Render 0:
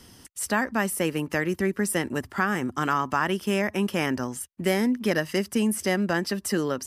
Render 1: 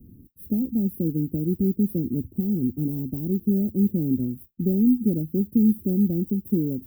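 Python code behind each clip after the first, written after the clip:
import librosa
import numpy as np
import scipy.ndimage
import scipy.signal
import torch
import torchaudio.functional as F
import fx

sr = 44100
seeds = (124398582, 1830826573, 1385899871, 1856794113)

y = fx.dynamic_eq(x, sr, hz=5000.0, q=0.88, threshold_db=-44.0, ratio=4.0, max_db=5)
y = fx.mod_noise(y, sr, seeds[0], snr_db=17)
y = scipy.signal.sosfilt(scipy.signal.cheby2(4, 80, [1400.0, 5500.0], 'bandstop', fs=sr, output='sos'), y)
y = y * 10.0 ** (6.5 / 20.0)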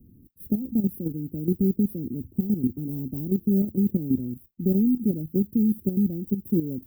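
y = fx.level_steps(x, sr, step_db=11)
y = y * 10.0 ** (2.5 / 20.0)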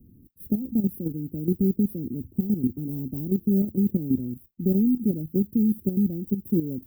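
y = x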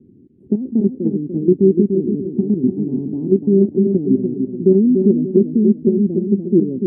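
y = fx.cabinet(x, sr, low_hz=150.0, low_slope=12, high_hz=3000.0, hz=(380.0, 610.0, 1200.0), db=(10, -5, -7))
y = fx.echo_feedback(y, sr, ms=293, feedback_pct=36, wet_db=-5.5)
y = y * 10.0 ** (7.0 / 20.0)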